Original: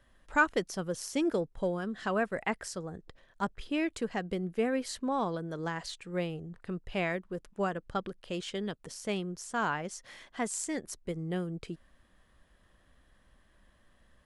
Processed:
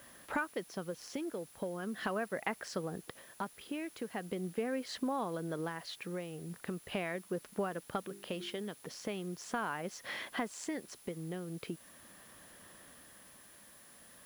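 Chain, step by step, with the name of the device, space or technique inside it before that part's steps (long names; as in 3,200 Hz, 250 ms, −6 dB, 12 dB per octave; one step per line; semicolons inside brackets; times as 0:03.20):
0:08.01–0:08.60: mains-hum notches 50/100/150/200/250/300/350/400 Hz
medium wave at night (band-pass filter 160–4,000 Hz; downward compressor 6 to 1, threshold −44 dBFS, peak gain reduction 22.5 dB; amplitude tremolo 0.4 Hz, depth 45%; steady tone 10,000 Hz −70 dBFS; white noise bed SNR 21 dB)
level +10.5 dB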